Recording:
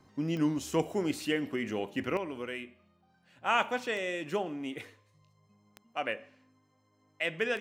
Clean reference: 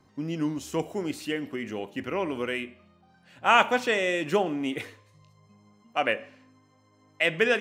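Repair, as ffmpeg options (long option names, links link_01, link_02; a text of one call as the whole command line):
ffmpeg -i in.wav -af "adeclick=threshold=4,asetnsamples=nb_out_samples=441:pad=0,asendcmd='2.17 volume volume 8dB',volume=0dB" out.wav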